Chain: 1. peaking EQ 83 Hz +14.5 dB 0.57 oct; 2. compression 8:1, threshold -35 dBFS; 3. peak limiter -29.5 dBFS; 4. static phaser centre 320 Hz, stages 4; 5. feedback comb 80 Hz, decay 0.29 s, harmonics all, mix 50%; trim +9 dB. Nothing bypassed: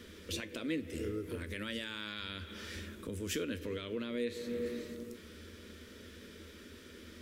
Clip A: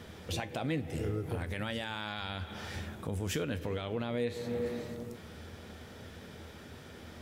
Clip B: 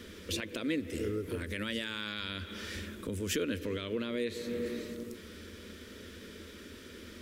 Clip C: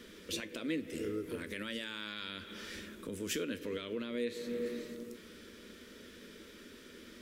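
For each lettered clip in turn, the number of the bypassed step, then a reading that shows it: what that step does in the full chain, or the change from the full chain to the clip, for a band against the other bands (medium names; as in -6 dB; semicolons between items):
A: 4, 1 kHz band +8.0 dB; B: 5, loudness change +3.5 LU; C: 1, 125 Hz band -6.0 dB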